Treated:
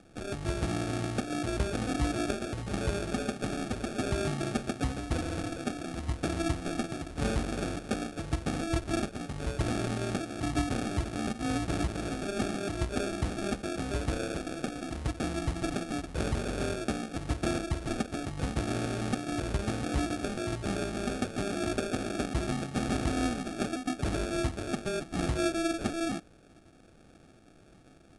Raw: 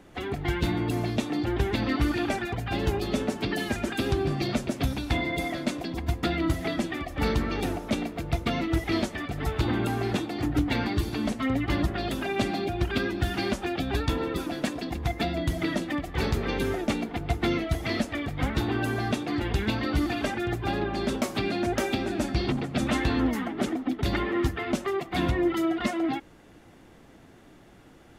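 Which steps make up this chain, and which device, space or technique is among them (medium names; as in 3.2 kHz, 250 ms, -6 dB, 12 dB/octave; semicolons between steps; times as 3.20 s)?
crushed at another speed (playback speed 2×; sample-and-hold 22×; playback speed 0.5×); trim -4.5 dB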